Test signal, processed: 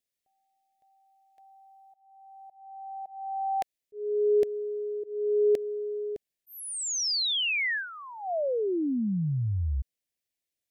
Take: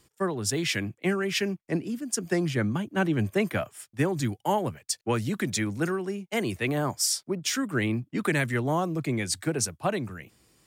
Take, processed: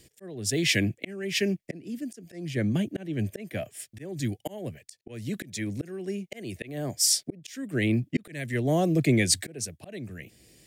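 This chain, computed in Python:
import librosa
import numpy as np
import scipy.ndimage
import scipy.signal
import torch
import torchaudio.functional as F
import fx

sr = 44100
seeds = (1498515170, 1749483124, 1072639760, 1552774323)

y = fx.auto_swell(x, sr, attack_ms=647.0)
y = fx.band_shelf(y, sr, hz=1100.0, db=-15.0, octaves=1.0)
y = F.gain(torch.from_numpy(y), 6.5).numpy()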